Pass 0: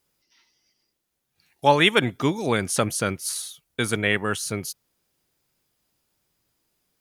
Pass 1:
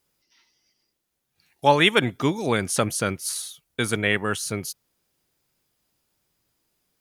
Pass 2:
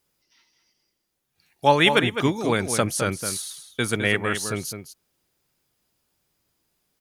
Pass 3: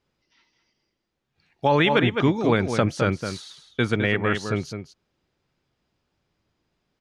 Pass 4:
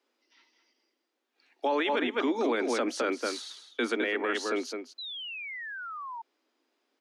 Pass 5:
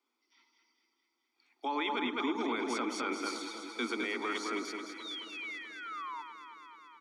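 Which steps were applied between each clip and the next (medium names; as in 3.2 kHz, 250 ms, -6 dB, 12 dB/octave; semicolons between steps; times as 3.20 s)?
no audible change
echo from a far wall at 36 m, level -8 dB
bass shelf 350 Hz +3 dB; peak limiter -9.5 dBFS, peak gain reduction 7 dB; distance through air 160 m; trim +2 dB
steep high-pass 240 Hz 96 dB/octave; peak limiter -19.5 dBFS, peak gain reduction 11.5 dB; painted sound fall, 4.98–6.22 s, 890–4100 Hz -39 dBFS
comb 0.9 ms, depth 69%; on a send: echo whose repeats swap between lows and highs 108 ms, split 1.4 kHz, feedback 86%, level -8 dB; on the sum: trim -6.5 dB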